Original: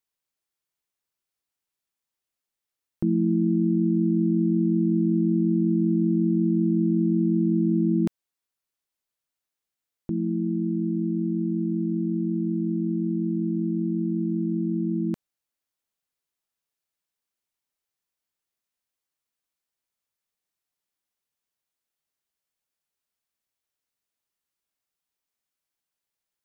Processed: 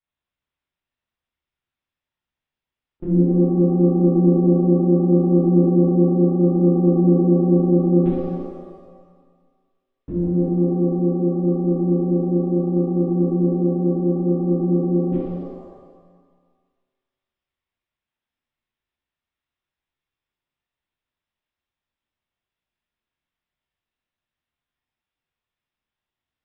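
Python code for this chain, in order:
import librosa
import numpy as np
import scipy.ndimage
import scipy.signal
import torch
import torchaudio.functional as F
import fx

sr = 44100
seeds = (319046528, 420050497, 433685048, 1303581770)

y = fx.lpc_vocoder(x, sr, seeds[0], excitation='pitch_kept', order=8)
y = fx.rev_shimmer(y, sr, seeds[1], rt60_s=1.5, semitones=7, shimmer_db=-8, drr_db=-9.0)
y = F.gain(torch.from_numpy(y), -4.5).numpy()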